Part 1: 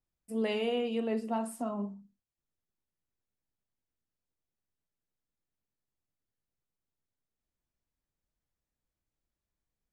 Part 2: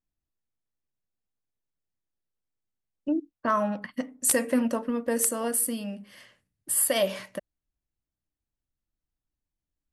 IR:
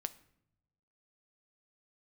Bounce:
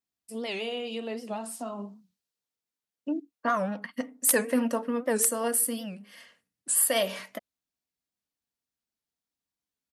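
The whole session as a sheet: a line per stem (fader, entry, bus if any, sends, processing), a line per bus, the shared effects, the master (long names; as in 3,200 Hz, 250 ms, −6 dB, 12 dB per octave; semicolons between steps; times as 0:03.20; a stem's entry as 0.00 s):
+3.0 dB, 0.00 s, no send, parametric band 4,400 Hz +6 dB 1.1 octaves; downward compressor 10 to 1, threshold −31 dBFS, peak gain reduction 5.5 dB; multiband upward and downward expander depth 40%
0.0 dB, 0.00 s, no send, comb filter 4.3 ms, depth 38%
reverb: not used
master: high-pass filter 100 Hz 12 dB per octave; low-shelf EQ 240 Hz −8.5 dB; wow of a warped record 78 rpm, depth 160 cents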